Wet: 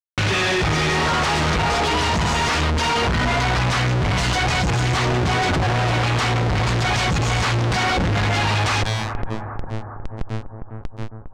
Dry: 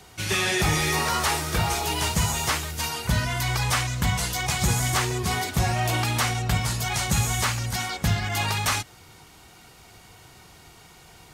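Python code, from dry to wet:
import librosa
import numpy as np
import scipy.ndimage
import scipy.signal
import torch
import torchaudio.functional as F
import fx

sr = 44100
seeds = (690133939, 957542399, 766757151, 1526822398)

y = fx.spec_gate(x, sr, threshold_db=-25, keep='strong')
y = fx.comb(y, sr, ms=4.2, depth=0.41, at=(1.5, 3.62))
y = fx.schmitt(y, sr, flips_db=-38.5)
y = fx.comb_fb(y, sr, f0_hz=110.0, decay_s=0.73, harmonics='all', damping=0.0, mix_pct=50)
y = fx.fuzz(y, sr, gain_db=58.0, gate_db=-59.0)
y = fx.air_absorb(y, sr, metres=110.0)
y = fx.echo_bbd(y, sr, ms=406, stages=4096, feedback_pct=46, wet_db=-14.5)
y = fx.env_flatten(y, sr, amount_pct=50)
y = y * 10.0 ** (-5.5 / 20.0)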